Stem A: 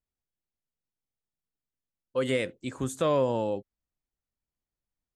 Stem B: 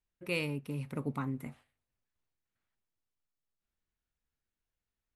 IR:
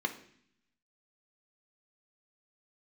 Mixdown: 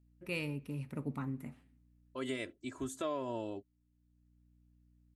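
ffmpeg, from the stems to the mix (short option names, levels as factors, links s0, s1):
-filter_complex "[0:a]aecho=1:1:3:0.84,acompressor=threshold=0.0708:ratio=6,volume=0.335,asplit=2[s0][s1];[1:a]aeval=exprs='val(0)+0.000708*(sin(2*PI*60*n/s)+sin(2*PI*2*60*n/s)/2+sin(2*PI*3*60*n/s)/3+sin(2*PI*4*60*n/s)/4+sin(2*PI*5*60*n/s)/5)':c=same,volume=0.631,asplit=2[s2][s3];[s3]volume=0.141[s4];[s1]apad=whole_len=227445[s5];[s2][s5]sidechaincompress=threshold=0.00251:ratio=8:attack=16:release=712[s6];[2:a]atrim=start_sample=2205[s7];[s4][s7]afir=irnorm=-1:irlink=0[s8];[s0][s6][s8]amix=inputs=3:normalize=0"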